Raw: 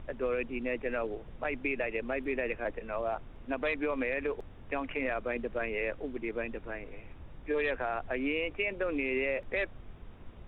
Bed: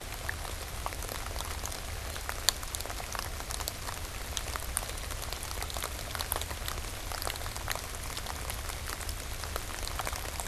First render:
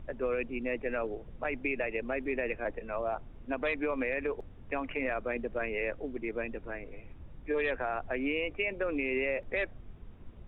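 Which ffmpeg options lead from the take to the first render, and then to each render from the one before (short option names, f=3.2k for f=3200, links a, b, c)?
-af "afftdn=nr=6:nf=-50"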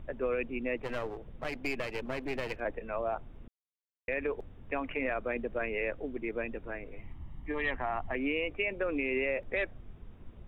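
-filter_complex "[0:a]asettb=1/sr,asplit=3[a][b][c];[a]atrim=end=0.774[d];[b]atrim=start=0.77:end=2.6,asetpts=PTS-STARTPTS,afade=t=in:d=0.004:c=qsin,afade=t=out:st=1.826:d=0.004:c=qsin,aeval=exprs='clip(val(0),-1,0.00841)':c=same[e];[c]atrim=start=2.596[f];[d][e]acrossfade=d=0.004:c1=hsin:c2=qsin[g];[g][f]acrossfade=d=0.004:c1=qsin:c2=hsin,asettb=1/sr,asplit=3[h][i][j];[h]atrim=end=6.984[k];[i]atrim=start=6.98:end=8.15,asetpts=PTS-STARTPTS,afade=t=in:d=0.004:c=qsin,afade=t=out:st=1.166:d=0.004:c=qsin,aecho=1:1:1:0.65,atrim=end_sample=51597[l];[j]atrim=start=8.146[m];[k][l]acrossfade=d=0.004:c1=hsin:c2=qsin[n];[n][m]acrossfade=d=0.004:c1=qsin:c2=hsin,asplit=3[o][p][q];[o]atrim=end=3.48,asetpts=PTS-STARTPTS,afade=t=out:st=3.476:d=0.004:c=hsin[r];[p]atrim=start=3.48:end=4.08,asetpts=PTS-STARTPTS,volume=0[s];[q]atrim=start=4.08,asetpts=PTS-STARTPTS,afade=t=in:d=0.004:c=hsin[t];[r][s][t]concat=n=3:v=0:a=1"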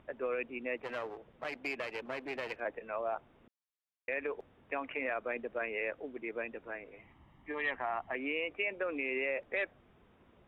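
-af "highpass=f=590:p=1,aemphasis=mode=reproduction:type=cd"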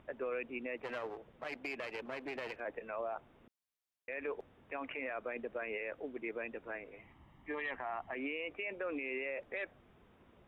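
-af "alimiter=level_in=6.5dB:limit=-24dB:level=0:latency=1:release=28,volume=-6.5dB"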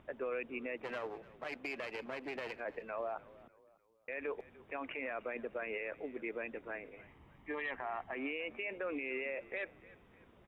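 -filter_complex "[0:a]asplit=4[a][b][c][d];[b]adelay=299,afreqshift=-42,volume=-20dB[e];[c]adelay=598,afreqshift=-84,volume=-27.3dB[f];[d]adelay=897,afreqshift=-126,volume=-34.7dB[g];[a][e][f][g]amix=inputs=4:normalize=0"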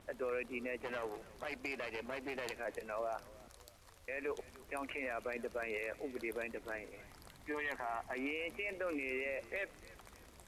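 -filter_complex "[1:a]volume=-24dB[a];[0:a][a]amix=inputs=2:normalize=0"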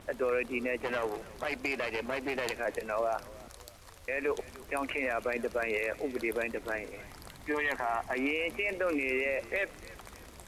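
-af "volume=8.5dB"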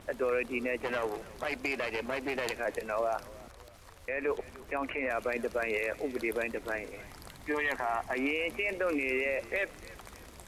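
-filter_complex "[0:a]asettb=1/sr,asplit=3[a][b][c];[a]atrim=end=3.364[d];[b]atrim=start=3.36:end=5.1,asetpts=PTS-STARTPTS,afade=t=in:d=0.004:c=qsin,afade=t=out:st=1.736:d=0.004:c=qsin,acrossover=split=2900[e][f];[f]acompressor=threshold=-55dB:ratio=4:attack=1:release=60[g];[e][g]amix=inputs=2:normalize=0[h];[c]atrim=start=5.096[i];[d][h]acrossfade=d=0.004:c1=hsin:c2=qsin[j];[j][i]acrossfade=d=0.004:c1=qsin:c2=hsin"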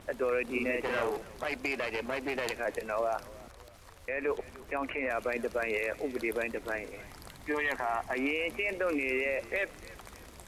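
-filter_complex "[0:a]asettb=1/sr,asplit=3[a][b][c];[a]atrim=end=0.434[d];[b]atrim=start=0.43:end=1.17,asetpts=PTS-STARTPTS,afade=t=in:d=0.004:c=qsin,afade=t=out:st=0.736:d=0.004:c=qsin,asplit=2[e][f];[f]adelay=43,volume=-2.5dB[g];[e][g]amix=inputs=2:normalize=0,atrim=end_sample=32634[h];[c]atrim=start=1.166[i];[d][h]acrossfade=d=0.004:c1=hsin:c2=qsin[j];[j][i]acrossfade=d=0.004:c1=qsin:c2=hsin"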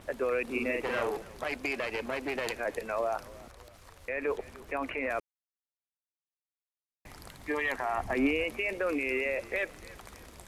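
-filter_complex "[0:a]asettb=1/sr,asplit=3[a][b][c];[a]atrim=end=7.974[d];[b]atrim=start=7.97:end=8.44,asetpts=PTS-STARTPTS,afade=t=in:d=0.004:c=qsin,afade=t=out:st=0.466:d=0.004:c=qsin,lowshelf=f=320:g=10.5[e];[c]atrim=start=8.436[f];[d][e]acrossfade=d=0.004:c1=hsin:c2=qsin[g];[g][f]acrossfade=d=0.004:c1=qsin:c2=hsin,asplit=3[h][i][j];[h]atrim=end=5.2,asetpts=PTS-STARTPTS,afade=t=out:st=5.196:d=0.004:c=hsin[k];[i]atrim=start=5.2:end=7.05,asetpts=PTS-STARTPTS,volume=0[l];[j]atrim=start=7.05,asetpts=PTS-STARTPTS,afade=t=in:d=0.004:c=hsin[m];[k][l][m]concat=n=3:v=0:a=1"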